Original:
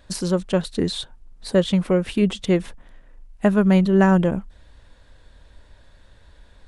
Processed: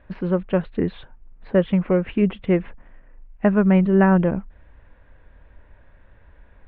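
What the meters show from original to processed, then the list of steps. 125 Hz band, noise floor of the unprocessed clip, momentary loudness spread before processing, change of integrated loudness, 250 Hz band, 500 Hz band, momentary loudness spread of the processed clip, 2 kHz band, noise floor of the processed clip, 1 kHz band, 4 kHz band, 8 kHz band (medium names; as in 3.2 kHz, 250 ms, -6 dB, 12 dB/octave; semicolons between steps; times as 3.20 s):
0.0 dB, -52 dBFS, 11 LU, 0.0 dB, 0.0 dB, 0.0 dB, 9 LU, -0.5 dB, -52 dBFS, 0.0 dB, under -10 dB, no reading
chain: steep low-pass 2.6 kHz 36 dB/octave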